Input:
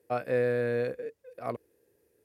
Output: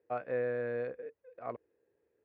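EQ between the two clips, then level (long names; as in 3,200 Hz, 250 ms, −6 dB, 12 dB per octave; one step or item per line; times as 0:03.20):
low-pass filter 1,800 Hz 6 dB per octave
high-frequency loss of the air 350 metres
low-shelf EQ 420 Hz −11.5 dB
0.0 dB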